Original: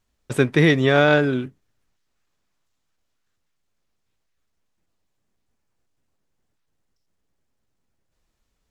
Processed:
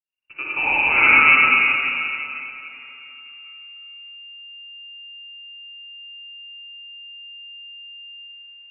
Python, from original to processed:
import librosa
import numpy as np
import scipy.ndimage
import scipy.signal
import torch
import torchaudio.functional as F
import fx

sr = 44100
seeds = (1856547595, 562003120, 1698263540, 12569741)

y = fx.fade_in_head(x, sr, length_s=1.65)
y = fx.rev_freeverb(y, sr, rt60_s=3.1, hf_ratio=0.85, predelay_ms=20, drr_db=-8.0)
y = fx.freq_invert(y, sr, carrier_hz=2800)
y = y * librosa.db_to_amplitude(-1.5)